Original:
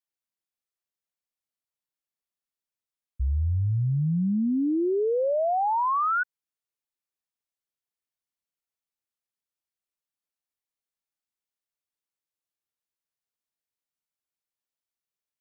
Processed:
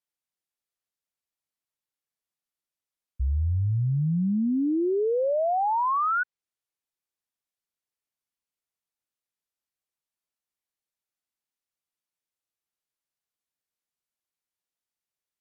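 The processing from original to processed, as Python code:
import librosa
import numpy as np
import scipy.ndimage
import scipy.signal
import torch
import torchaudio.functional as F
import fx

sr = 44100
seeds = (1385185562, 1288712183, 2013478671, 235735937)

y = fx.env_lowpass_down(x, sr, base_hz=3000.0, full_db=-22.0)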